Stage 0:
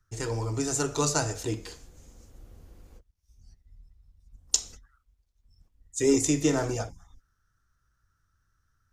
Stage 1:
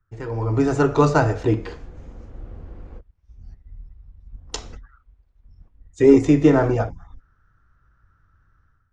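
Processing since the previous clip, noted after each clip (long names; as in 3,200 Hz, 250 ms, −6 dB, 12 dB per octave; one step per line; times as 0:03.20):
low-pass filter 1,800 Hz 12 dB per octave
automatic gain control gain up to 13 dB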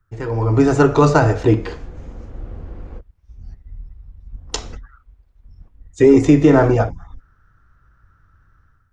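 boost into a limiter +6.5 dB
level −1 dB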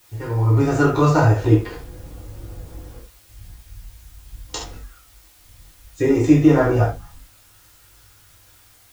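in parallel at −11.5 dB: bit-depth reduction 6 bits, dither triangular
on the sum: convolution reverb, pre-delay 5 ms, DRR −3.5 dB
level −10 dB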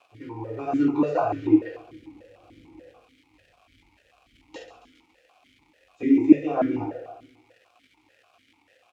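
surface crackle 360 per second −34 dBFS
repeating echo 137 ms, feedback 51%, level −13.5 dB
formant filter that steps through the vowels 6.8 Hz
level +3.5 dB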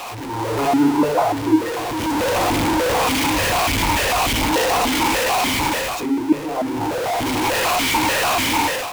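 converter with a step at zero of −22 dBFS
parametric band 940 Hz +9 dB 0.35 octaves
automatic gain control gain up to 13.5 dB
level −5 dB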